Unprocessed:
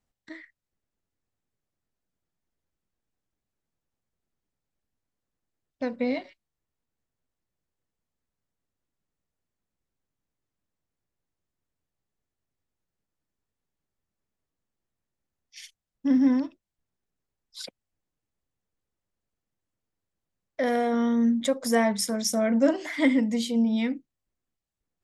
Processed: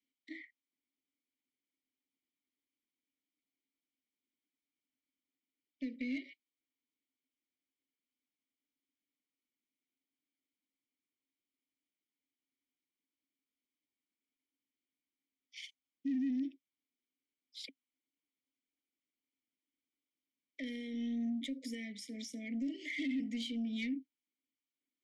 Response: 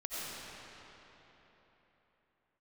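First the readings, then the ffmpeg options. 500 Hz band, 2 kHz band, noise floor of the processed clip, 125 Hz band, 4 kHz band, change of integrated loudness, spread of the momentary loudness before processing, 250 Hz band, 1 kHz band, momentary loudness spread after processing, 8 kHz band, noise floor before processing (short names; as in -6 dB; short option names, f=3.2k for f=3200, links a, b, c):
-27.0 dB, -11.5 dB, under -85 dBFS, n/a, -10.5 dB, -14.5 dB, 15 LU, -13.0 dB, under -35 dB, 15 LU, under -20 dB, under -85 dBFS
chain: -filter_complex "[0:a]bass=f=250:g=-14,treble=f=4k:g=7,asplit=2[a][b];[b]acompressor=threshold=-34dB:ratio=6,volume=-2.5dB[c];[a][c]amix=inputs=2:normalize=0,alimiter=limit=-16.5dB:level=0:latency=1:release=144,acrossover=split=210|3000[d][e][f];[e]acompressor=threshold=-29dB:ratio=6[g];[d][g][f]amix=inputs=3:normalize=0,asplit=3[h][i][j];[h]bandpass=f=270:t=q:w=8,volume=0dB[k];[i]bandpass=f=2.29k:t=q:w=8,volume=-6dB[l];[j]bandpass=f=3.01k:t=q:w=8,volume=-9dB[m];[k][l][m]amix=inputs=3:normalize=0,asoftclip=type=tanh:threshold=-35.5dB,asuperstop=centerf=1100:order=20:qfactor=0.97,volume=3.5dB"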